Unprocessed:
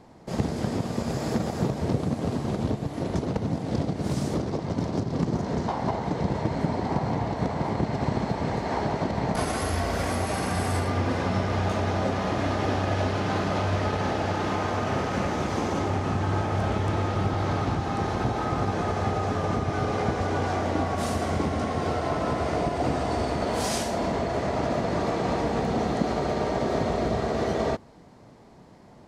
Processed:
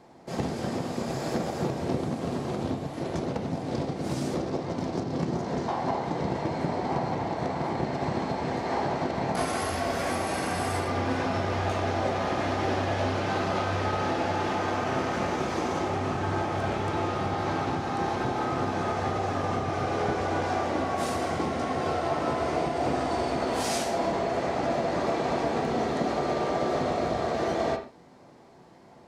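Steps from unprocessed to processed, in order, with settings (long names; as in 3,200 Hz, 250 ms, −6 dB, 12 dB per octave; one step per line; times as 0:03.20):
low-shelf EQ 120 Hz −11.5 dB
convolution reverb, pre-delay 3 ms, DRR 3 dB
level −1.5 dB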